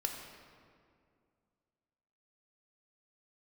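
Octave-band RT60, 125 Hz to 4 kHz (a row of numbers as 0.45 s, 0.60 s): 2.6 s, 2.7 s, 2.4 s, 2.1 s, 1.7 s, 1.3 s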